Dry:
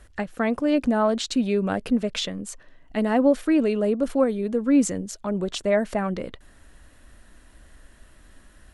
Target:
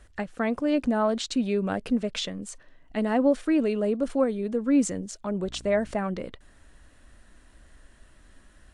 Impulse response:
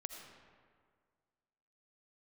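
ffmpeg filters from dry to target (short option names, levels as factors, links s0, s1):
-filter_complex "[0:a]asettb=1/sr,asplit=3[s0][s1][s2];[s0]atrim=end=5.444[s3];[s1]atrim=start=5.44:end=5.92,asetpts=PTS-STARTPTS,afade=t=in:d=0.004:c=qsin,afade=t=out:st=0.476:d=0.004:c=qsin,aeval=exprs='val(0)+0.00708*(sin(2*PI*60*n/s)+sin(2*PI*2*60*n/s)/2+sin(2*PI*3*60*n/s)/3+sin(2*PI*4*60*n/s)/4+sin(2*PI*5*60*n/s)/5)':c=same[s4];[s2]atrim=start=5.916[s5];[s3][s4]acrossfade=d=0.004:c1=hsin:c2=qsin[s6];[s6][s5]acrossfade=d=0.004:c1=qsin:c2=hsin,volume=0.708" -ar 22050 -c:a aac -b:a 96k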